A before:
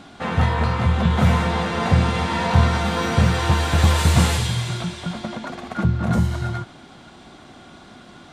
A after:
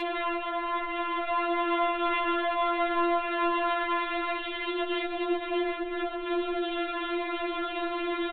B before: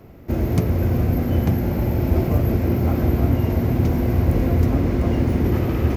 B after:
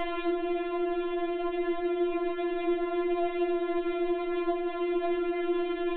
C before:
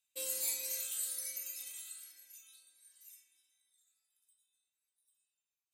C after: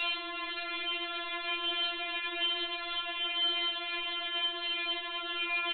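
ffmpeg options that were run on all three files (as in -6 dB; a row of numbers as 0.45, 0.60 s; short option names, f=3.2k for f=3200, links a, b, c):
-filter_complex "[0:a]aeval=exprs='val(0)+0.5*0.112*sgn(val(0))':c=same,acrossover=split=370|2500[a][b][c];[a]alimiter=limit=-13dB:level=0:latency=1:release=129[d];[d][b][c]amix=inputs=3:normalize=0,acompressor=threshold=-20dB:ratio=2.5,lowshelf=f=110:g=-7.5,aresample=8000,asoftclip=type=tanh:threshold=-22dB,aresample=44100,acrossover=split=200[e][f];[f]acompressor=threshold=-33dB:ratio=6[g];[e][g]amix=inputs=2:normalize=0,afftfilt=real='re*4*eq(mod(b,16),0)':imag='im*4*eq(mod(b,16),0)':win_size=2048:overlap=0.75,volume=5dB"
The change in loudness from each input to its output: -9.0, -10.0, +5.5 LU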